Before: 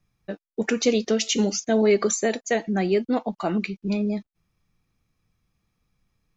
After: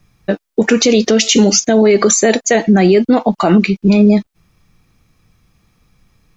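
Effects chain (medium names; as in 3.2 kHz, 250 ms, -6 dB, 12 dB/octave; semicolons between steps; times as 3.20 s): loudness maximiser +18 dB; trim -1 dB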